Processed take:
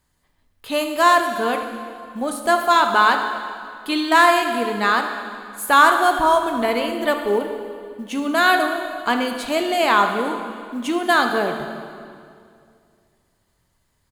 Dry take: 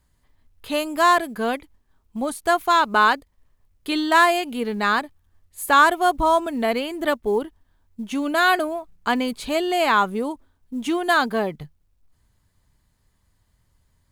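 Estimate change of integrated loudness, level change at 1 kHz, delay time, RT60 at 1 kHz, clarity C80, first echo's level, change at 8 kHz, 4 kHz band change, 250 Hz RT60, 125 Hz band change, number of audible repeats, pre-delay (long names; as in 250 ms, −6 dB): +2.0 dB, +2.5 dB, 76 ms, 2.2 s, 7.5 dB, −15.0 dB, +2.5 dB, +2.5 dB, 2.6 s, can't be measured, 1, 12 ms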